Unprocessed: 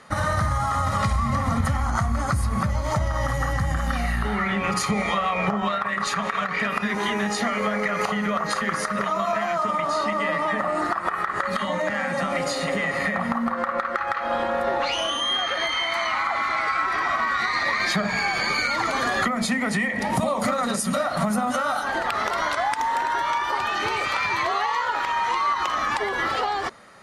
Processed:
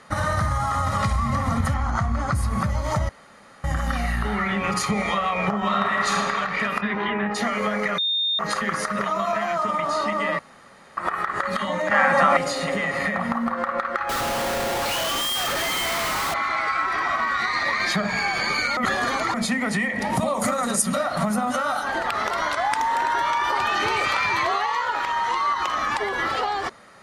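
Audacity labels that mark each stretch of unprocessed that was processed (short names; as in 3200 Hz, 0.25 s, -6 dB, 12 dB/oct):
1.740000	2.350000	air absorption 76 m
3.090000	3.640000	room tone
5.590000	6.140000	reverb throw, RT60 2.4 s, DRR -1.5 dB
6.800000	7.340000	LPF 3900 Hz -> 2400 Hz 24 dB/oct
7.980000	8.390000	bleep 3650 Hz -20 dBFS
10.390000	10.970000	room tone
11.910000	12.370000	bell 1100 Hz +12 dB 2.1 oct
14.090000	16.340000	Schmitt trigger flips at -35 dBFS
18.770000	19.340000	reverse
20.340000	20.820000	resonant high shelf 5800 Hz +6 dB, Q 1.5
22.640000	24.560000	fast leveller amount 70%
25.080000	25.620000	notch 2400 Hz, Q 10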